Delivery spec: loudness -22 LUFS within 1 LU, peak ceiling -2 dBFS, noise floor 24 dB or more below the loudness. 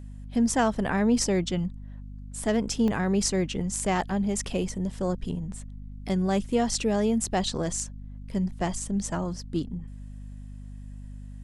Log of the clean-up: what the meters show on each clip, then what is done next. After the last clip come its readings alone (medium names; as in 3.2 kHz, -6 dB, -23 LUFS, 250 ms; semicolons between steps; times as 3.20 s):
dropouts 1; longest dropout 1.1 ms; hum 50 Hz; highest harmonic 250 Hz; hum level -38 dBFS; loudness -27.5 LUFS; peak level -11.5 dBFS; loudness target -22.0 LUFS
-> interpolate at 2.88 s, 1.1 ms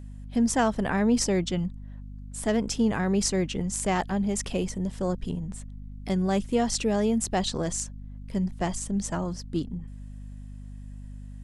dropouts 0; hum 50 Hz; highest harmonic 250 Hz; hum level -38 dBFS
-> de-hum 50 Hz, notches 5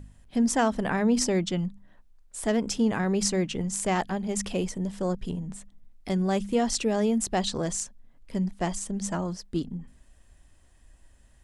hum not found; loudness -28.0 LUFS; peak level -12.0 dBFS; loudness target -22.0 LUFS
-> trim +6 dB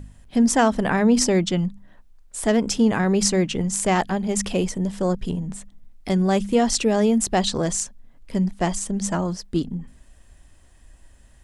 loudness -22.0 LUFS; peak level -6.0 dBFS; noise floor -51 dBFS